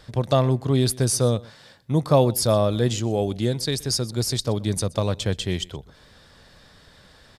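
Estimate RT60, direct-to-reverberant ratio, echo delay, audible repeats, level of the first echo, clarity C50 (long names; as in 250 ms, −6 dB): no reverb audible, no reverb audible, 124 ms, 1, −22.5 dB, no reverb audible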